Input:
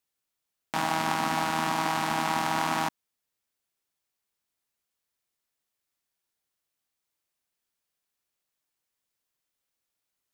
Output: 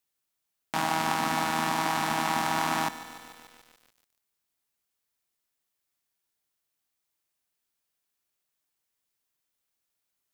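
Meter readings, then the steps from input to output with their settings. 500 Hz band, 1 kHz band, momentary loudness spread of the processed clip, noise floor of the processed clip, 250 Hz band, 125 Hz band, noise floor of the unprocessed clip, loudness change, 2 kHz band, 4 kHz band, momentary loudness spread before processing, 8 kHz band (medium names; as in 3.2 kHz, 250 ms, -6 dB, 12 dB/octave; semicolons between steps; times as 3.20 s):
-0.5 dB, 0.0 dB, 10 LU, -82 dBFS, 0.0 dB, -0.5 dB, -84 dBFS, 0.0 dB, +0.5 dB, +0.5 dB, 4 LU, +1.5 dB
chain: treble shelf 10 kHz +3.5 dB; band-stop 520 Hz, Q 17; bit-crushed delay 146 ms, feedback 80%, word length 7-bit, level -14.5 dB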